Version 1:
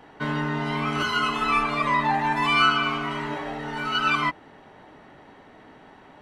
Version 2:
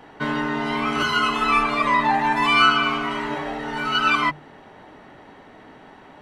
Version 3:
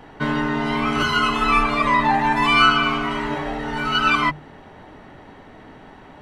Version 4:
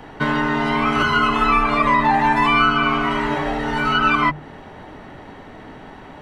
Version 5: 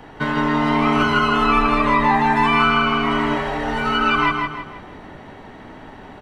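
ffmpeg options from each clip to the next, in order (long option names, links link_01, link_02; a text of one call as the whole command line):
ffmpeg -i in.wav -af "bandreject=frequency=50:width_type=h:width=6,bandreject=frequency=100:width_type=h:width=6,bandreject=frequency=150:width_type=h:width=6,volume=3.5dB" out.wav
ffmpeg -i in.wav -af "lowshelf=frequency=120:gain=11.5,volume=1dB" out.wav
ffmpeg -i in.wav -filter_complex "[0:a]acrossover=split=570|2500[link_01][link_02][link_03];[link_01]acompressor=threshold=-25dB:ratio=4[link_04];[link_02]acompressor=threshold=-19dB:ratio=4[link_05];[link_03]acompressor=threshold=-40dB:ratio=4[link_06];[link_04][link_05][link_06]amix=inputs=3:normalize=0,volume=4.5dB" out.wav
ffmpeg -i in.wav -af "aecho=1:1:161|322|483|644|805:0.631|0.246|0.096|0.0374|0.0146,volume=-2dB" out.wav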